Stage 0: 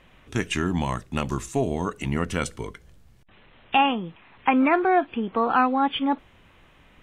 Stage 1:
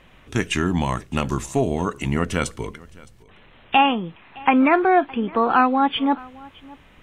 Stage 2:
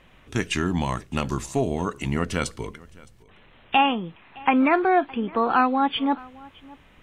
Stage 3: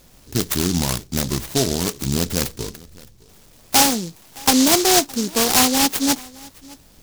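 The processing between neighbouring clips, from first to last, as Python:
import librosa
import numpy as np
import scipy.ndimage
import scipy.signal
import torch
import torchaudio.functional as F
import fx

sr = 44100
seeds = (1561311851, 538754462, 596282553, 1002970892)

y1 = x + 10.0 ** (-23.0 / 20.0) * np.pad(x, (int(614 * sr / 1000.0), 0))[:len(x)]
y1 = F.gain(torch.from_numpy(y1), 3.5).numpy()
y2 = fx.dynamic_eq(y1, sr, hz=4600.0, q=3.0, threshold_db=-49.0, ratio=4.0, max_db=6)
y2 = F.gain(torch.from_numpy(y2), -3.0).numpy()
y3 = fx.noise_mod_delay(y2, sr, seeds[0], noise_hz=5200.0, depth_ms=0.23)
y3 = F.gain(torch.from_numpy(y3), 4.0).numpy()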